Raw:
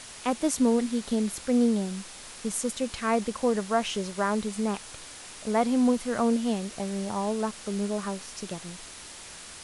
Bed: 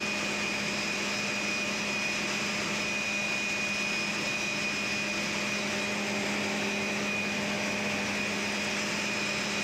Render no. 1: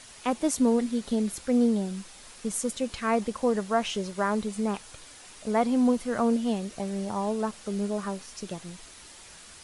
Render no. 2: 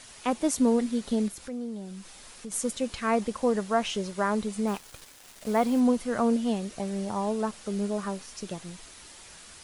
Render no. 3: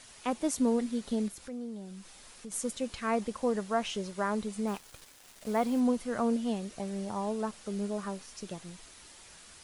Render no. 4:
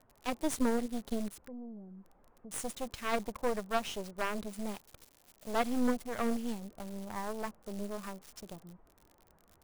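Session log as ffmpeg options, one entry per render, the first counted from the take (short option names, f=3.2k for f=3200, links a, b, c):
-af "afftdn=nr=6:nf=-44"
-filter_complex "[0:a]asettb=1/sr,asplit=3[a][b][c];[a]atrim=end=1.284[d];[b]atrim=start=1.28:end=2.52,asetpts=PTS-STARTPTS,afade=t=in:d=0.004:c=qsin,afade=t=out:st=1.236:d=0.004:c=qsin,acompressor=threshold=-42dB:ratio=2:attack=3.2:release=140:knee=1:detection=peak[e];[c]atrim=start=2.516[f];[d][e]acrossfade=d=0.004:c1=hsin:c2=qsin[g];[g][f]acrossfade=d=0.004:c1=qsin:c2=hsin,asettb=1/sr,asplit=3[h][i][j];[h]atrim=end=4.674[k];[i]atrim=start=4.67:end=5.8,asetpts=PTS-STARTPTS,afade=t=in:d=0.004:c=qsin,afade=t=out:st=1.126:d=0.004:c=qsin,acrusher=bits=6:mix=0:aa=0.5[l];[j]atrim=start=5.796[m];[k][l]acrossfade=d=0.004:c1=hsin:c2=qsin[n];[n][m]acrossfade=d=0.004:c1=qsin:c2=hsin"
-af "volume=-4.5dB"
-filter_complex "[0:a]aeval=exprs='0.168*(cos(1*acos(clip(val(0)/0.168,-1,1)))-cos(1*PI/2))+0.00299*(cos(2*acos(clip(val(0)/0.168,-1,1)))-cos(2*PI/2))+0.0266*(cos(3*acos(clip(val(0)/0.168,-1,1)))-cos(3*PI/2))+0.00237*(cos(5*acos(clip(val(0)/0.168,-1,1)))-cos(5*PI/2))+0.0211*(cos(6*acos(clip(val(0)/0.168,-1,1)))-cos(6*PI/2))':c=same,acrossover=split=1200[a][b];[b]acrusher=bits=7:mix=0:aa=0.000001[c];[a][c]amix=inputs=2:normalize=0"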